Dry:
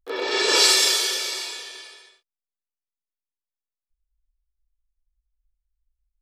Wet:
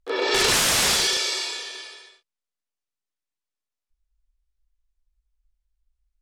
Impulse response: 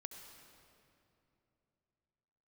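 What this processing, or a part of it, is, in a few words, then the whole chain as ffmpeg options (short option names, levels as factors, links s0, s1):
overflowing digital effects unit: -af "aeval=exprs='(mod(5.62*val(0)+1,2)-1)/5.62':c=same,lowpass=8700,volume=1.41"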